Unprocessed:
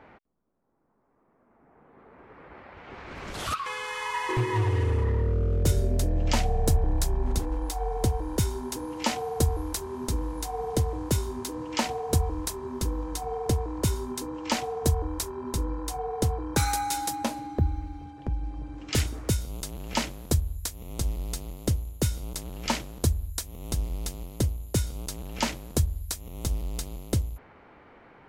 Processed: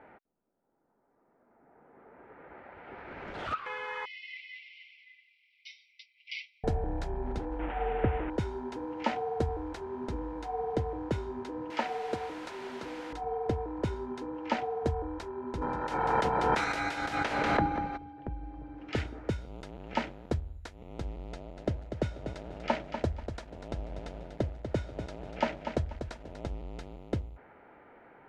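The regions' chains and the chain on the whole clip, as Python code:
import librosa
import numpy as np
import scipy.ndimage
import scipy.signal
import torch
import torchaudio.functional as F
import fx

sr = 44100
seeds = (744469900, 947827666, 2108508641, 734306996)

y = fx.chain(x, sr, fx.brickwall_bandpass(low_hz=2000.0, high_hz=5900.0),
    fx.comb(ms=6.9, depth=0.98), at=(4.05, 6.64))
y = fx.chain(y, sr, fx.delta_mod(bps=16000, step_db=-29.0),
    fx.low_shelf(hz=420.0, db=4.0), at=(7.59, 8.3))
y = fx.chain(y, sr, fx.highpass(hz=150.0, slope=12),
    fx.low_shelf(hz=300.0, db=-7.5),
    fx.quant_dither(seeds[0], bits=6, dither='triangular'), at=(11.7, 13.13))
y = fx.spec_clip(y, sr, under_db=25, at=(15.61, 17.96), fade=0.02)
y = fx.echo_single(y, sr, ms=192, db=-8.5, at=(15.61, 17.96), fade=0.02)
y = fx.pre_swell(y, sr, db_per_s=22.0, at=(15.61, 17.96), fade=0.02)
y = fx.chain(y, sr, fx.lowpass(hz=10000.0, slope=12),
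    fx.peak_eq(hz=620.0, db=8.0, octaves=0.29),
    fx.echo_crushed(ms=243, feedback_pct=35, bits=7, wet_db=-7.5), at=(21.32, 26.48))
y = scipy.signal.sosfilt(scipy.signal.butter(2, 1900.0, 'lowpass', fs=sr, output='sos'), y)
y = fx.low_shelf(y, sr, hz=190.0, db=-11.0)
y = fx.notch(y, sr, hz=1100.0, q=6.1)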